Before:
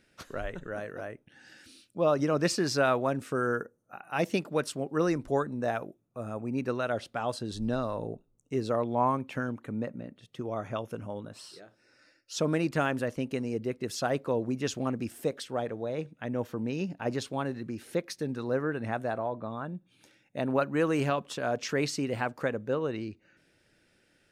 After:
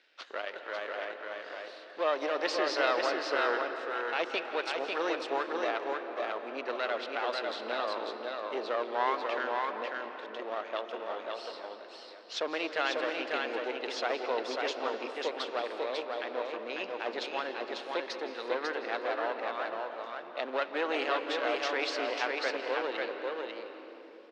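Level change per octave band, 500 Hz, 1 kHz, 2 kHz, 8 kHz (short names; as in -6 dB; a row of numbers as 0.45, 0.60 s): -1.5, +1.0, +3.5, -9.0 dB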